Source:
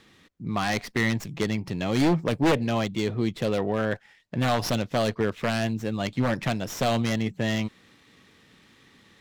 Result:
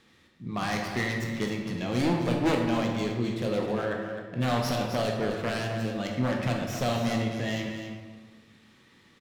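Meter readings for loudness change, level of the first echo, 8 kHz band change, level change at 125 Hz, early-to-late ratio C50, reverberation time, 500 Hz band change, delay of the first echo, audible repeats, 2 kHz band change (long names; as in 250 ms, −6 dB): −2.5 dB, −9.0 dB, −3.5 dB, −2.5 dB, 2.0 dB, 1.4 s, −2.5 dB, 259 ms, 1, −3.0 dB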